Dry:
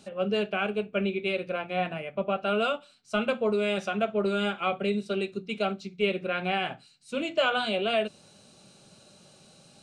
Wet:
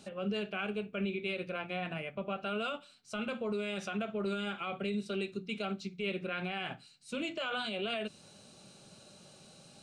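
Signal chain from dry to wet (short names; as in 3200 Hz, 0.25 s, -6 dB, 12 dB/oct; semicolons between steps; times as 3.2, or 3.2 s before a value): limiter -24.5 dBFS, peak gain reduction 11 dB; dynamic EQ 610 Hz, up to -5 dB, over -47 dBFS, Q 0.99; gain -1 dB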